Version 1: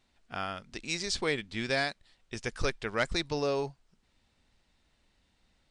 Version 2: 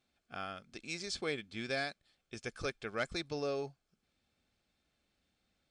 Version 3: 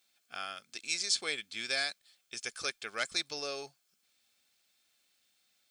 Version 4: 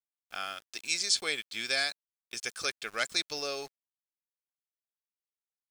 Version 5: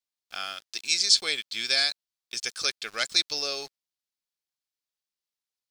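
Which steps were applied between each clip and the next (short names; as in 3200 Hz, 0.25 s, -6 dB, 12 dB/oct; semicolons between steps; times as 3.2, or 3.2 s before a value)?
notch comb 960 Hz; gain -6 dB
tilt +4.5 dB/oct
sample gate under -51.5 dBFS; gain +3 dB
bell 4500 Hz +9 dB 1.2 oct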